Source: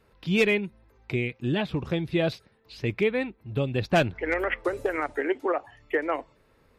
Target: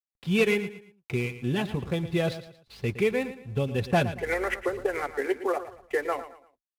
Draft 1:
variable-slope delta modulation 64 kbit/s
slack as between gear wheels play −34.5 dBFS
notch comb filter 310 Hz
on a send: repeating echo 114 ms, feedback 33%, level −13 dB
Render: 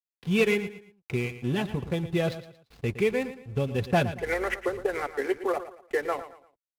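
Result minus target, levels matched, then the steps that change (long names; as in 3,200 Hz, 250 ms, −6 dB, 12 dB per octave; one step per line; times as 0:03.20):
slack as between gear wheels: distortion +8 dB
change: slack as between gear wheels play −43.5 dBFS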